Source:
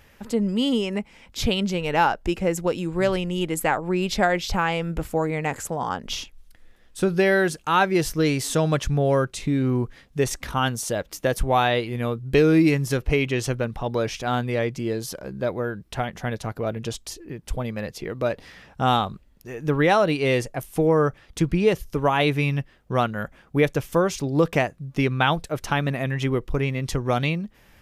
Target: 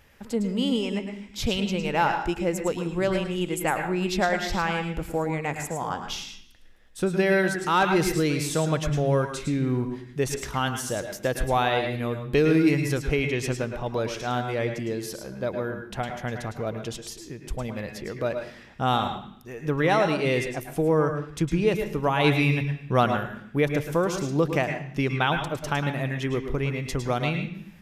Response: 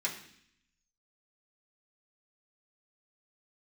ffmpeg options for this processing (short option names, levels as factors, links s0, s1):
-filter_complex "[0:a]asettb=1/sr,asplit=3[s0][s1][s2];[s0]atrim=end=22.244[s3];[s1]atrim=start=22.24:end=23.17,asetpts=PTS-STARTPTS,afade=t=in:d=0.004:c=qsin,afade=t=out:st=0.926:d=0.004:c=qsin,acontrast=24[s4];[s2]atrim=start=23.166[s5];[s3][s4]acrossfade=d=0.004:c1=hsin:c2=qsin[s6];[s6][s5]acrossfade=d=0.004:c1=qsin:c2=hsin,asplit=2[s7][s8];[1:a]atrim=start_sample=2205,adelay=106[s9];[s8][s9]afir=irnorm=-1:irlink=0,volume=0.335[s10];[s7][s10]amix=inputs=2:normalize=0,asettb=1/sr,asplit=3[s11][s12][s13];[s11]atrim=end=7.614[s14];[s12]atrim=start=7.61:end=8.2,asetpts=PTS-STARTPTS,afade=t=in:d=0.004:c=qsin,afade=t=out:st=0.586:d=0.004:c=qsin,aeval=exprs='0.447*(cos(1*acos(clip(val(0)/0.447,-1,1)))-cos(1*PI/2))+0.0447*(cos(5*acos(clip(val(0)/0.447,-1,1)))-cos(5*PI/2))+0.00631*(cos(7*acos(clip(val(0)/0.447,-1,1)))-cos(7*PI/2))':c=same[s15];[s13]atrim=start=8.196[s16];[s14][s15]acrossfade=d=0.004:c1=hsin:c2=qsin[s17];[s17][s16]acrossfade=d=0.004:c1=qsin:c2=hsin,volume=0.668"